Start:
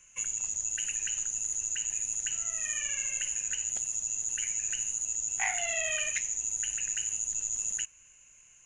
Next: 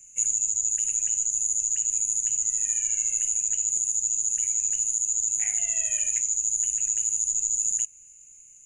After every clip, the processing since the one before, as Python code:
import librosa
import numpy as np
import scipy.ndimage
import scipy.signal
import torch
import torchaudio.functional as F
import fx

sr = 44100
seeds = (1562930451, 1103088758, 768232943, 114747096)

y = fx.curve_eq(x, sr, hz=(470.0, 910.0, 2300.0, 4400.0, 7000.0), db=(0, -27, -6, -18, 9))
y = fx.rider(y, sr, range_db=10, speed_s=0.5)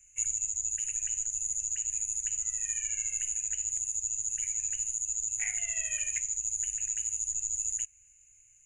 y = fx.curve_eq(x, sr, hz=(100.0, 240.0, 1000.0, 2100.0, 5100.0), db=(0, -22, -3, 0, -10))
y = fx.upward_expand(y, sr, threshold_db=-41.0, expansion=1.5)
y = y * 10.0 ** (4.5 / 20.0)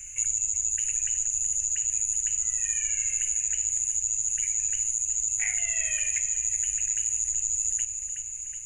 y = fx.echo_feedback(x, sr, ms=372, feedback_pct=53, wet_db=-13.5)
y = fx.env_flatten(y, sr, amount_pct=50)
y = y * 10.0 ** (3.0 / 20.0)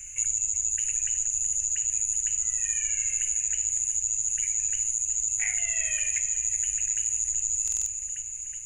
y = fx.buffer_glitch(x, sr, at_s=(7.63,), block=2048, repeats=4)